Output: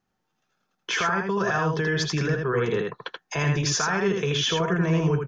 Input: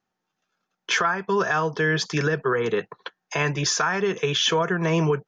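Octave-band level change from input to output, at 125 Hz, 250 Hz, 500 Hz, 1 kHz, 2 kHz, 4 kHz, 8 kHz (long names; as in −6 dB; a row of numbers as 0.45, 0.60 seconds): +2.5, +1.0, −2.0, −2.5, −2.5, −2.5, −1.5 decibels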